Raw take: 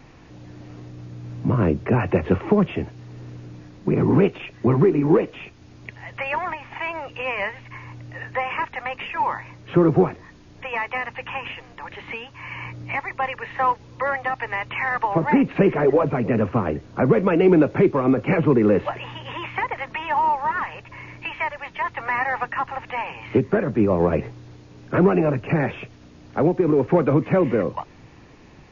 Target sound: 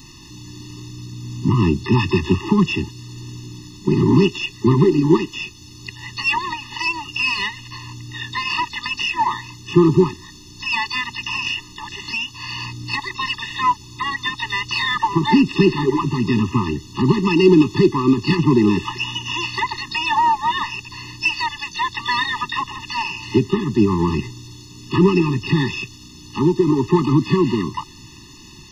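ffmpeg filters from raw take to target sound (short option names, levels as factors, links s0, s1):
-filter_complex "[0:a]asplit=2[s0][s1];[s1]asetrate=88200,aresample=44100,atempo=0.5,volume=0.126[s2];[s0][s2]amix=inputs=2:normalize=0,aexciter=amount=3.8:drive=8.9:freq=2800,afftfilt=real='re*eq(mod(floor(b*sr/1024/420),2),0)':imag='im*eq(mod(floor(b*sr/1024/420),2),0)':win_size=1024:overlap=0.75,volume=1.58"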